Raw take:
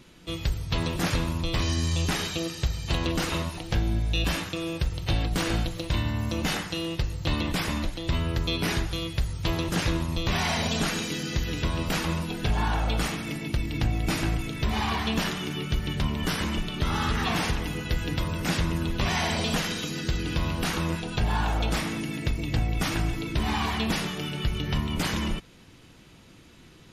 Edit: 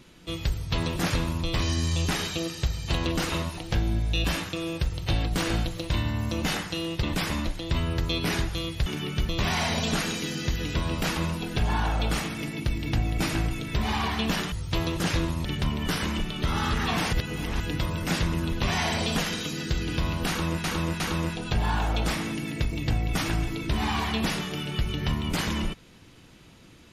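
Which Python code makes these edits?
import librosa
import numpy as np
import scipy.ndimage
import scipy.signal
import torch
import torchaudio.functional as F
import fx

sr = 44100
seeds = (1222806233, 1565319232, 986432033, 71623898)

y = fx.edit(x, sr, fx.cut(start_s=7.03, length_s=0.38),
    fx.swap(start_s=9.24, length_s=0.93, other_s=15.4, other_length_s=0.43),
    fx.reverse_span(start_s=17.51, length_s=0.47),
    fx.repeat(start_s=20.66, length_s=0.36, count=3), tone=tone)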